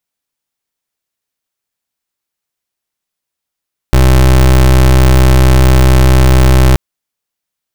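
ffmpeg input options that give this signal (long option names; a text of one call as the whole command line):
ffmpeg -f lavfi -i "aevalsrc='0.531*(2*lt(mod(64.4*t,1),0.27)-1)':duration=2.83:sample_rate=44100" out.wav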